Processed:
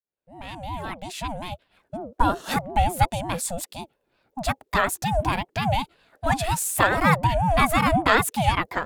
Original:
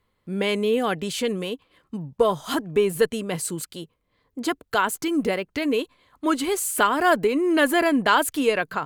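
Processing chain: fade-in on the opening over 2.44 s; ring modulator with a swept carrier 440 Hz, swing 25%, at 5.5 Hz; trim +3 dB

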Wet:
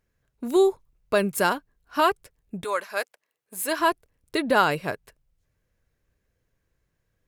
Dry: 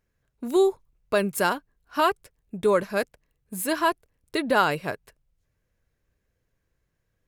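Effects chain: 2.63–3.78 s: high-pass 920 Hz -> 380 Hz 12 dB/octave; trim +1 dB

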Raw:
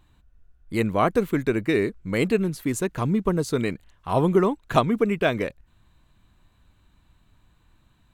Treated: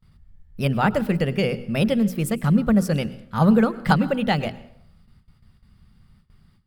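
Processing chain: hum notches 50/100/150/200/250/300/350 Hz; gate with hold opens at -51 dBFS; resonant low shelf 200 Hz +6 dB, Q 3; tape speed +22%; reverberation RT60 0.70 s, pre-delay 92 ms, DRR 17 dB

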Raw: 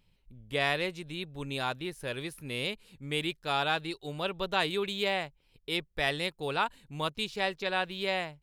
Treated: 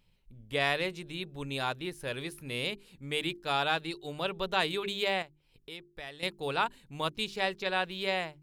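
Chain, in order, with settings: hum notches 50/100/150/200/250/300/350/400 Hz; 5.22–6.23 s: compression 2:1, threshold -52 dBFS, peak gain reduction 15 dB

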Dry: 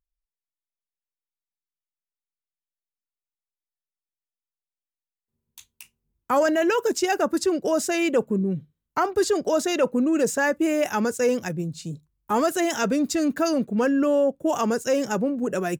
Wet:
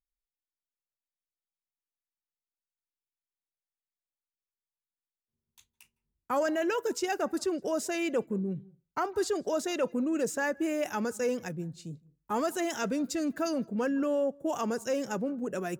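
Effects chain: reverberation RT60 0.30 s, pre-delay 154 ms, DRR 24.5 dB; tape noise reduction on one side only decoder only; trim -8 dB

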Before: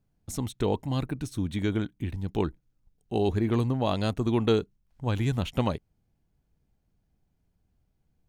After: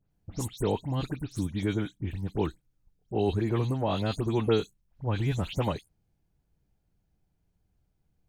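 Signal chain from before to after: delay that grows with frequency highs late, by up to 105 ms; trim -1 dB

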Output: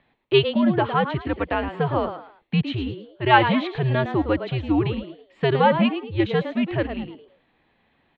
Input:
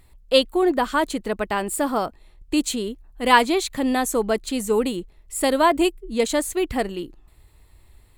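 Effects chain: mistuned SSB -130 Hz 190–3500 Hz; frequency-shifting echo 109 ms, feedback 31%, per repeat +110 Hz, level -10 dB

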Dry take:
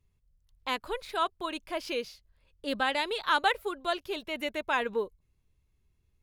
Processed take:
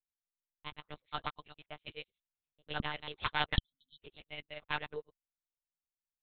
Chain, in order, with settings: time reversed locally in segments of 81 ms; treble shelf 2 kHz +11.5 dB; integer overflow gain 13 dB; spectral selection erased 3.56–3.99 s, 260–3000 Hz; monotone LPC vocoder at 8 kHz 150 Hz; upward expansion 2.5:1, over -43 dBFS; trim -4.5 dB

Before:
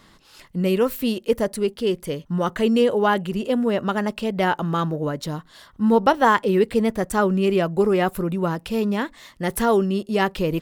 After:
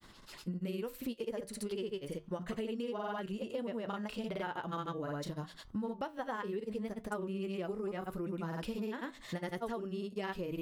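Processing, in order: granulator, pitch spread up and down by 0 st; flange 0.7 Hz, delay 7.5 ms, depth 2.6 ms, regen -74%; compression 10:1, threshold -37 dBFS, peak gain reduction 20.5 dB; trim +1.5 dB

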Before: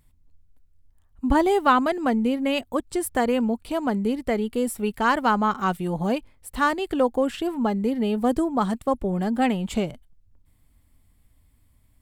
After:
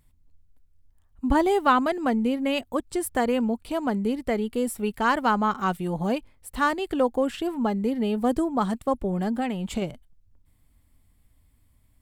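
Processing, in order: 9.31–9.82 s: compression, threshold -22 dBFS, peak gain reduction 6 dB; trim -1.5 dB

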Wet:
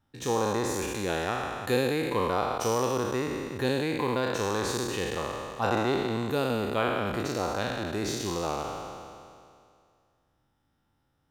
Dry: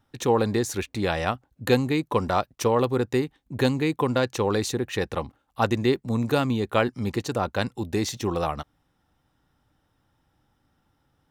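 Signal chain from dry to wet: spectral sustain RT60 2.30 s; trim -8.5 dB

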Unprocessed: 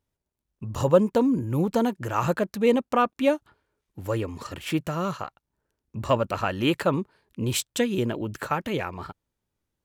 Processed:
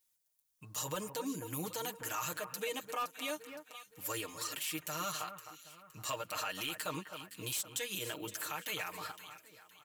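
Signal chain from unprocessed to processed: pre-emphasis filter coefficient 0.97; in parallel at -3 dB: wavefolder -28.5 dBFS; on the sum: comb 6.5 ms, depth 89%; compression, threshold -33 dBFS, peak gain reduction 11.5 dB; echo whose repeats swap between lows and highs 258 ms, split 2 kHz, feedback 59%, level -12 dB; peak limiter -31 dBFS, peak gain reduction 10 dB; trim +3.5 dB

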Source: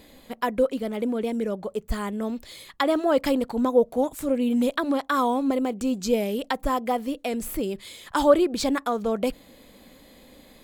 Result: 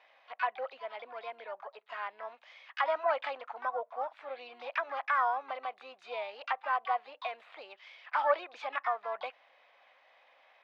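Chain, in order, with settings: Chebyshev band-pass 680–2600 Hz, order 3; harmony voices +7 st -8 dB; trim -4 dB

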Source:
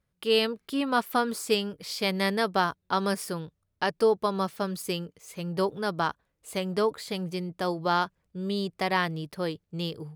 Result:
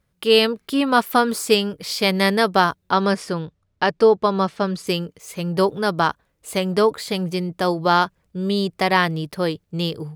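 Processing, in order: 2.92–4.87 s: distance through air 76 m; trim +8.5 dB

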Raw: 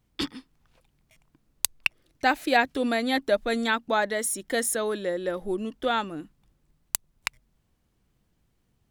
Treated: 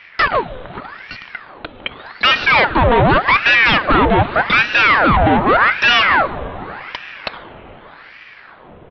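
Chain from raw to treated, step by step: tilt shelf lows +10 dB, about 1.5 kHz; in parallel at +1 dB: compression, threshold -29 dBFS, peak gain reduction 17 dB; on the sum: vibrato 2.5 Hz 6.4 cents; overdrive pedal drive 36 dB, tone 2.1 kHz, clips at -2.5 dBFS; on a send at -11 dB: reverberation RT60 4.7 s, pre-delay 7 ms; on the sum: resampled via 8 kHz; ring modulator with a swept carrier 1.2 kHz, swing 80%, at 0.85 Hz

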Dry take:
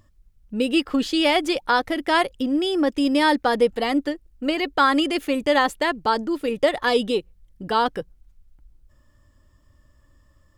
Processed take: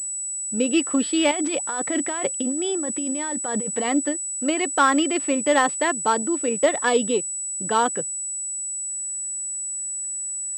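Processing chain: 1.31–3.89 s: compressor with a negative ratio -27 dBFS, ratio -1; high-pass 150 Hz 24 dB/octave; class-D stage that switches slowly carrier 7.9 kHz

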